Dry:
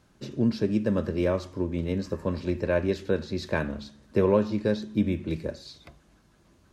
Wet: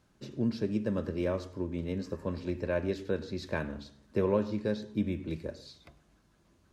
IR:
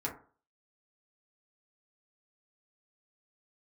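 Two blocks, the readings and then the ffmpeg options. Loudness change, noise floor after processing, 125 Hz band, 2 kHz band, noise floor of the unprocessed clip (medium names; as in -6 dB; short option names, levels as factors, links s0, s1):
-6.0 dB, -67 dBFS, -6.0 dB, -6.0 dB, -61 dBFS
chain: -filter_complex "[0:a]asplit=2[s0][s1];[1:a]atrim=start_sample=2205,adelay=100[s2];[s1][s2]afir=irnorm=-1:irlink=0,volume=0.0891[s3];[s0][s3]amix=inputs=2:normalize=0,volume=0.501"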